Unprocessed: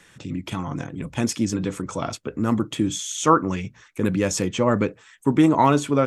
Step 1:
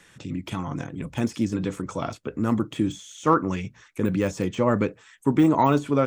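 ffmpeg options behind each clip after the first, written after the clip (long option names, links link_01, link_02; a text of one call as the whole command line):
ffmpeg -i in.wav -af "deesser=0.9,volume=-1.5dB" out.wav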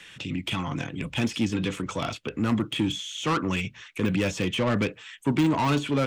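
ffmpeg -i in.wav -filter_complex "[0:a]equalizer=frequency=2900:width_type=o:width=1.2:gain=14,acrossover=split=220[link_01][link_02];[link_02]asoftclip=type=tanh:threshold=-22.5dB[link_03];[link_01][link_03]amix=inputs=2:normalize=0" out.wav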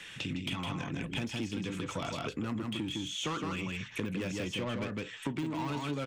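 ffmpeg -i in.wav -af "aecho=1:1:159:0.631,acompressor=threshold=-33dB:ratio=6" out.wav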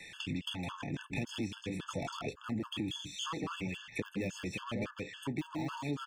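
ffmpeg -i in.wav -af "afftfilt=real='re*gt(sin(2*PI*3.6*pts/sr)*(1-2*mod(floor(b*sr/1024/880),2)),0)':imag='im*gt(sin(2*PI*3.6*pts/sr)*(1-2*mod(floor(b*sr/1024/880),2)),0)':win_size=1024:overlap=0.75" out.wav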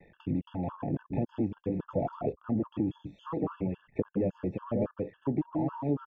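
ffmpeg -i in.wav -af "anlmdn=0.00631,lowpass=frequency=660:width_type=q:width=1.6,volume=6dB" out.wav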